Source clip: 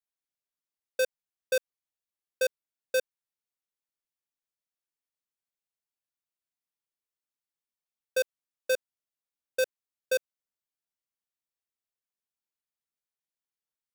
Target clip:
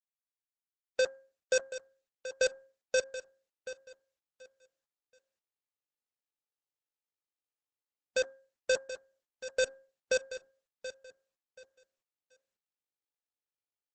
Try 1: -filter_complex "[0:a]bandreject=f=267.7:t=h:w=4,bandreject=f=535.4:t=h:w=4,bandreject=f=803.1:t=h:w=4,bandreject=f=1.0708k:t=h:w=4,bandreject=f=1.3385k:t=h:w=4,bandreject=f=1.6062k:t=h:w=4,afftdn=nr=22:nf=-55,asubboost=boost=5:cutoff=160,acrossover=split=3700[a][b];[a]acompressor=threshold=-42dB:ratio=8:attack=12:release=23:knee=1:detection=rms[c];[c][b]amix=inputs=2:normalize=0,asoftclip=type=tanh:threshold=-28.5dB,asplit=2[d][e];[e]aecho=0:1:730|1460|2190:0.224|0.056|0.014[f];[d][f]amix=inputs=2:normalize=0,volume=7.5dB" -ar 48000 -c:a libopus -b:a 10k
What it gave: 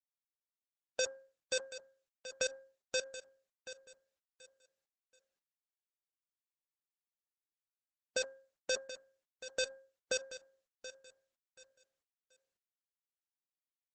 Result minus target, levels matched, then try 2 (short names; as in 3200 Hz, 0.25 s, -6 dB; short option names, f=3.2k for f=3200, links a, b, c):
compressor: peak gain reduction +10 dB
-filter_complex "[0:a]bandreject=f=267.7:t=h:w=4,bandreject=f=535.4:t=h:w=4,bandreject=f=803.1:t=h:w=4,bandreject=f=1.0708k:t=h:w=4,bandreject=f=1.3385k:t=h:w=4,bandreject=f=1.6062k:t=h:w=4,afftdn=nr=22:nf=-55,asubboost=boost=5:cutoff=160,acrossover=split=3700[a][b];[a]acompressor=threshold=-30.5dB:ratio=8:attack=12:release=23:knee=1:detection=rms[c];[c][b]amix=inputs=2:normalize=0,asoftclip=type=tanh:threshold=-28.5dB,asplit=2[d][e];[e]aecho=0:1:730|1460|2190:0.224|0.056|0.014[f];[d][f]amix=inputs=2:normalize=0,volume=7.5dB" -ar 48000 -c:a libopus -b:a 10k